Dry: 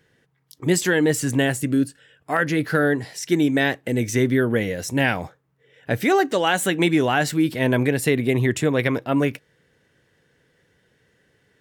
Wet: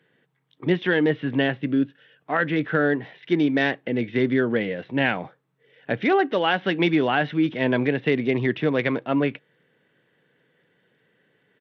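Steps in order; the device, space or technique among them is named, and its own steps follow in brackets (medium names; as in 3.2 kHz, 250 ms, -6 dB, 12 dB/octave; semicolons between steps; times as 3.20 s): Bluetooth headset (high-pass 140 Hz 24 dB/octave; resampled via 8 kHz; trim -1.5 dB; SBC 64 kbps 32 kHz)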